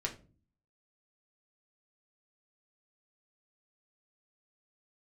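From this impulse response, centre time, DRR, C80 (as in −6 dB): 12 ms, −0.5 dB, 18.5 dB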